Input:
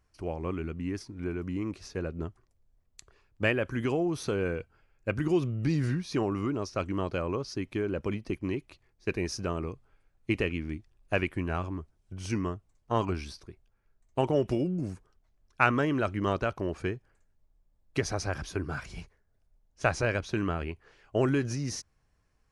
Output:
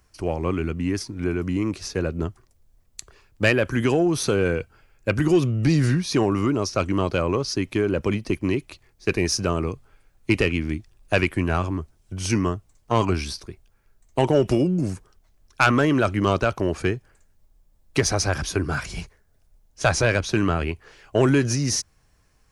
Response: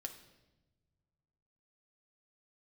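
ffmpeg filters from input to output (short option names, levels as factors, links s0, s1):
-filter_complex "[0:a]highshelf=f=4200:g=7.5,acrossover=split=120[s0][s1];[s1]asoftclip=type=tanh:threshold=0.133[s2];[s0][s2]amix=inputs=2:normalize=0,volume=2.82"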